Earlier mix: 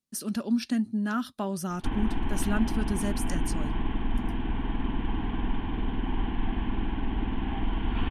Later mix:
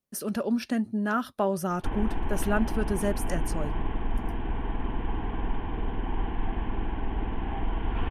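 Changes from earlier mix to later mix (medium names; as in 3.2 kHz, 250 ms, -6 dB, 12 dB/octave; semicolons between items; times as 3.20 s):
speech +4.5 dB; master: add graphic EQ 250/500/4000/8000 Hz -7/+7/-7/-6 dB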